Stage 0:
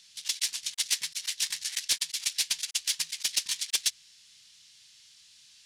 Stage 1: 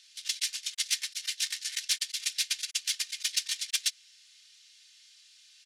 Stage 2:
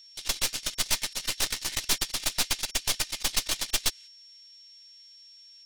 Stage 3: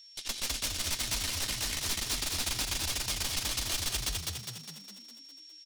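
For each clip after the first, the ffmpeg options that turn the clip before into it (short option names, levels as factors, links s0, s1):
-af "highpass=f=1300:w=0.5412,highpass=f=1300:w=1.3066,highshelf=f=6100:g=-5.5,aecho=1:1:3.3:0.46"
-af "agate=range=0.355:threshold=0.00355:ratio=16:detection=peak,aeval=exprs='0.211*(cos(1*acos(clip(val(0)/0.211,-1,1)))-cos(1*PI/2))+0.0237*(cos(5*acos(clip(val(0)/0.211,-1,1)))-cos(5*PI/2))+0.075*(cos(6*acos(clip(val(0)/0.211,-1,1)))-cos(6*PI/2))':c=same,aeval=exprs='val(0)+0.00398*sin(2*PI*5500*n/s)':c=same,volume=0.841"
-filter_complex "[0:a]equalizer=f=230:w=5.1:g=7.5,asplit=2[s0][s1];[s1]asplit=8[s2][s3][s4][s5][s6][s7][s8][s9];[s2]adelay=204,afreqshift=38,volume=0.668[s10];[s3]adelay=408,afreqshift=76,volume=0.376[s11];[s4]adelay=612,afreqshift=114,volume=0.209[s12];[s5]adelay=816,afreqshift=152,volume=0.117[s13];[s6]adelay=1020,afreqshift=190,volume=0.0661[s14];[s7]adelay=1224,afreqshift=228,volume=0.0367[s15];[s8]adelay=1428,afreqshift=266,volume=0.0207[s16];[s9]adelay=1632,afreqshift=304,volume=0.0115[s17];[s10][s11][s12][s13][s14][s15][s16][s17]amix=inputs=8:normalize=0[s18];[s0][s18]amix=inputs=2:normalize=0,alimiter=limit=0.112:level=0:latency=1:release=56,volume=0.841"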